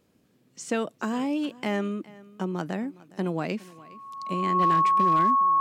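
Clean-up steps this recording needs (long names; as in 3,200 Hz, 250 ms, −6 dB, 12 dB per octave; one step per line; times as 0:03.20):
clipped peaks rebuilt −15.5 dBFS
notch filter 1,100 Hz, Q 30
echo removal 412 ms −21 dB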